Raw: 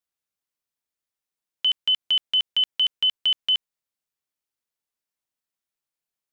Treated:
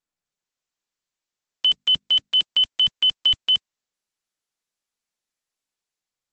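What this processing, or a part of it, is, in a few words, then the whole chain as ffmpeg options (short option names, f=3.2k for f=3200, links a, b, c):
video call: -filter_complex "[0:a]asettb=1/sr,asplit=3[a][b][c];[a]atrim=end=1.664[d];[b]atrim=start=1.66:end=2.38,asetpts=PTS-STARTPTS,afade=t=in:d=0.004:c=qsin,afade=t=out:st=0.716:d=0.004:c=qsin,bandreject=f=50:t=h:w=6,bandreject=f=100:t=h:w=6,bandreject=f=150:t=h:w=6,bandreject=f=200:t=h:w=6,bandreject=f=250:t=h:w=6[e];[c]atrim=start=2.376[f];[d][e]acrossfade=d=0.004:c1=hsin:c2=qsin[g];[g][f]acrossfade=d=0.004:c1=qsin:c2=hsin,highpass=f=130:w=0.5412,highpass=f=130:w=1.3066,dynaudnorm=f=120:g=9:m=8dB,volume=-5dB" -ar 48000 -c:a libopus -b:a 12k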